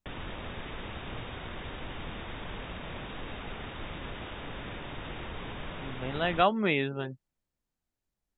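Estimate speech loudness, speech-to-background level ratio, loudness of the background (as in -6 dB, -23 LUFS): -28.5 LUFS, 12.0 dB, -40.5 LUFS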